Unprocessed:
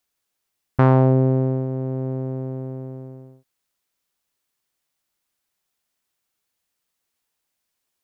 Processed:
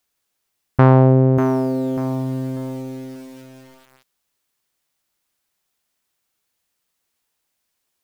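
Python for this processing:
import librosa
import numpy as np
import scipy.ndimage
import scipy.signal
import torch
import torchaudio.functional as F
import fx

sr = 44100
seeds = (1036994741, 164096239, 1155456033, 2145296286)

y = fx.echo_crushed(x, sr, ms=592, feedback_pct=35, bits=7, wet_db=-8)
y = y * 10.0 ** (3.5 / 20.0)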